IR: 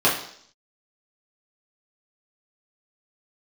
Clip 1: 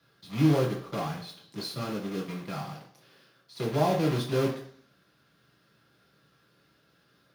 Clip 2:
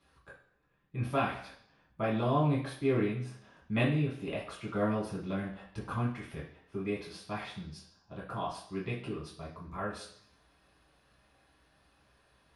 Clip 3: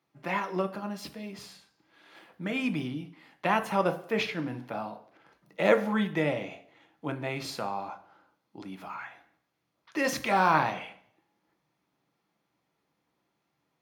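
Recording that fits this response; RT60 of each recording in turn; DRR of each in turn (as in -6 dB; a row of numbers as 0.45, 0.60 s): 2; 0.60, 0.60, 0.60 s; -2.0, -7.5, 7.0 dB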